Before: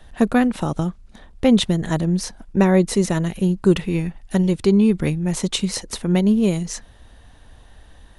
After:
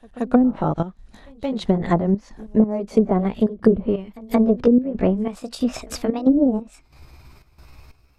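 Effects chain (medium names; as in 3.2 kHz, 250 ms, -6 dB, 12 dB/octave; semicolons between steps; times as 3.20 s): pitch bend over the whole clip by +6 st starting unshifted; dynamic bell 690 Hz, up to +6 dB, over -33 dBFS, Q 0.82; trance gate "..xxx.xx" 91 bpm -12 dB; low-pass that closes with the level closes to 330 Hz, closed at -11.5 dBFS; pre-echo 175 ms -22.5 dB; trim +1.5 dB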